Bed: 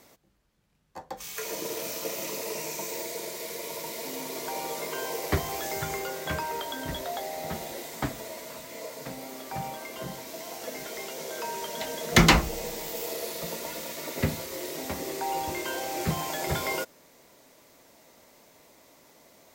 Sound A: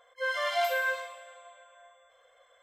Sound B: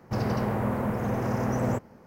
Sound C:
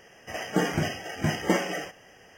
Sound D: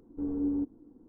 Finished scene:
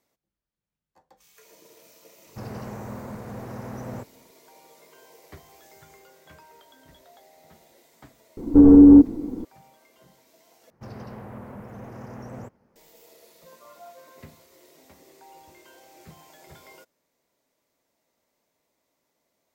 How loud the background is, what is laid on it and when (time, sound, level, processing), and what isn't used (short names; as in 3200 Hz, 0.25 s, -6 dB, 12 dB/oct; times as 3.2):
bed -19.5 dB
2.25 add B -9 dB
8.37 add D -2.5 dB + maximiser +26 dB
10.7 replace with B -12.5 dB + shaped vibrato saw up 5.9 Hz, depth 100 cents
13.24 add A -17 dB + Chebyshev band-pass 440–1400 Hz, order 5
not used: C